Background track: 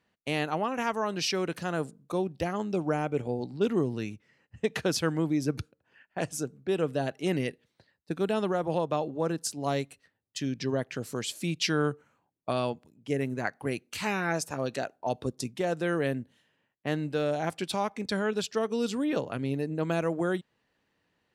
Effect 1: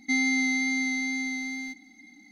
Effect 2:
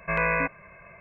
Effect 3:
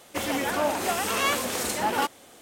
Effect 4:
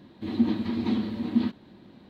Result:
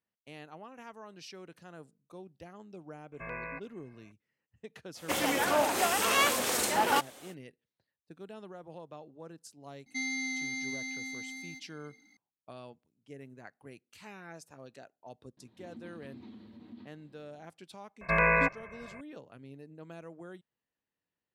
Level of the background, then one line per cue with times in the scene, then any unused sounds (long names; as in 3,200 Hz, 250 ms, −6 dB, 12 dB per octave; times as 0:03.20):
background track −18.5 dB
0:03.12: mix in 2 −16 dB
0:04.94: mix in 3 −0.5 dB, fades 0.05 s + low-shelf EQ 220 Hz −8 dB
0:09.86: mix in 1 −12.5 dB + high-shelf EQ 2,400 Hz +7.5 dB
0:15.37: mix in 4 −15 dB + downward compressor 2 to 1, threshold −38 dBFS
0:18.01: mix in 2